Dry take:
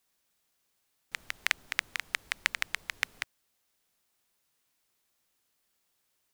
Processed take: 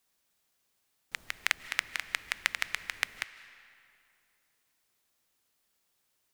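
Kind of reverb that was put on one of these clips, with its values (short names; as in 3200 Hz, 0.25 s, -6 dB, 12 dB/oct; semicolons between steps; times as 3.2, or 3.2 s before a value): digital reverb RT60 2.5 s, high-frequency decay 0.75×, pre-delay 0.115 s, DRR 14.5 dB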